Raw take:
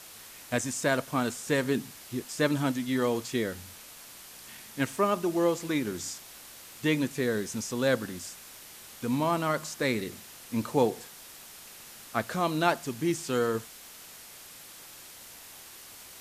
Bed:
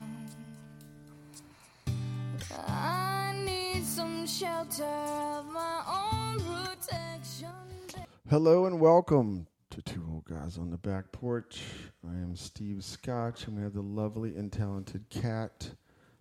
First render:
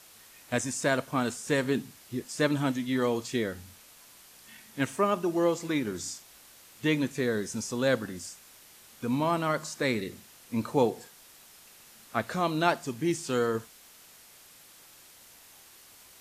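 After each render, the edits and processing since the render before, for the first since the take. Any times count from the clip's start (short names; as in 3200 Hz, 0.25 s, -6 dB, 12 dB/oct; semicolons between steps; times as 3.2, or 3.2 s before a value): noise print and reduce 6 dB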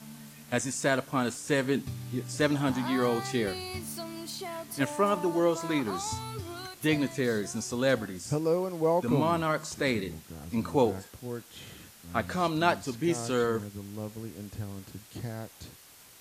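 add bed -4.5 dB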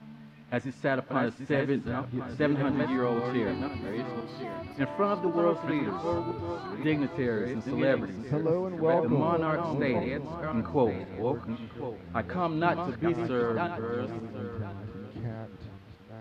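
regenerating reverse delay 0.526 s, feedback 42%, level -5 dB; air absorption 360 m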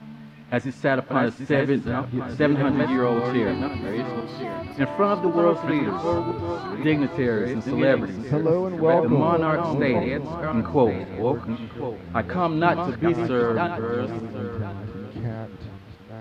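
gain +6.5 dB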